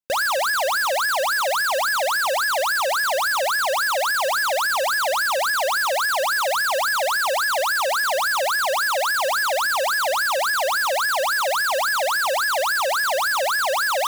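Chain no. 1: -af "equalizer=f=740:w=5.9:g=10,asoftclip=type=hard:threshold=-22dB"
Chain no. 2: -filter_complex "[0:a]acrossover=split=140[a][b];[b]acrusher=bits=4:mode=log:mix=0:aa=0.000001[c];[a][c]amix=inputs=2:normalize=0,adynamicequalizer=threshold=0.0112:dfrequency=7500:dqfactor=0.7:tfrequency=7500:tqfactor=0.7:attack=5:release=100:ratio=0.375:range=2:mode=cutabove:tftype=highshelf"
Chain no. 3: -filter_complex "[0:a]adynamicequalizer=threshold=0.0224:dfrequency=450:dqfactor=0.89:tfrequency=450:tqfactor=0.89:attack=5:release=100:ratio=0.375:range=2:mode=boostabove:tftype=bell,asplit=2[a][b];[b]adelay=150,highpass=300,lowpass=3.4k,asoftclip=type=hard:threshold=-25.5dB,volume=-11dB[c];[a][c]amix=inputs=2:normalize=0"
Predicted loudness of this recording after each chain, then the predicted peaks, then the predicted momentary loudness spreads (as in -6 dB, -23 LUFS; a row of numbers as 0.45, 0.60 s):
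-21.5, -20.5, -19.0 LUFS; -22.0, -13.5, -16.0 dBFS; 1, 0, 0 LU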